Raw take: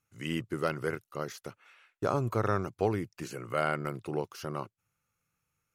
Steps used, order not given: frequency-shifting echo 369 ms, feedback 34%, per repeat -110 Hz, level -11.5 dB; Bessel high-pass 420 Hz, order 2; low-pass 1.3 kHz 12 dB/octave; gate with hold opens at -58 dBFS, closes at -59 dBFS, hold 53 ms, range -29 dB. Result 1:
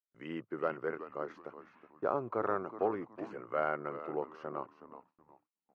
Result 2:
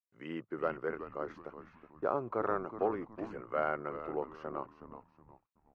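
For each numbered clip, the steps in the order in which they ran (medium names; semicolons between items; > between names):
low-pass > frequency-shifting echo > Bessel high-pass > gate with hold; Bessel high-pass > frequency-shifting echo > gate with hold > low-pass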